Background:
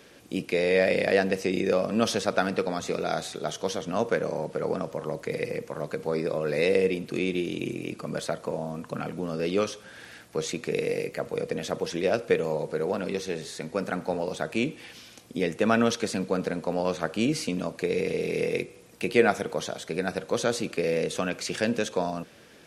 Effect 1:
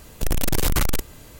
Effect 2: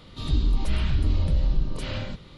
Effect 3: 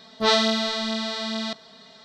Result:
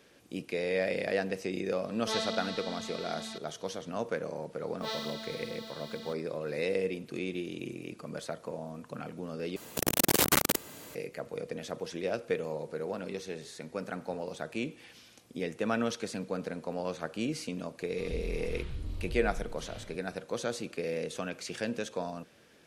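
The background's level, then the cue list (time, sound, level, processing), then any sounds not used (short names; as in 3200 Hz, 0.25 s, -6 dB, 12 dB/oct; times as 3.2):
background -8 dB
1.85 add 3 -14.5 dB
4.6 add 3 -17.5 dB + block floating point 5-bit
9.56 replace with 1 + HPF 210 Hz
17.8 add 2 -15.5 dB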